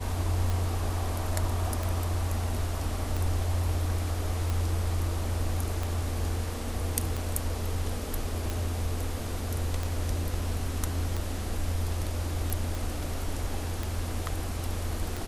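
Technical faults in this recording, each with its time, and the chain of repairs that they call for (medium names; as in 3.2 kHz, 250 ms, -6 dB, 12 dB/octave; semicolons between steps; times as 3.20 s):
tick 45 rpm
12.75 s: pop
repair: de-click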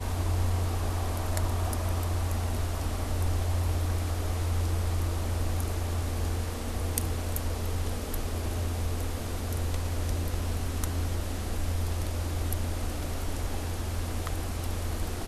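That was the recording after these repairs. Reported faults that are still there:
nothing left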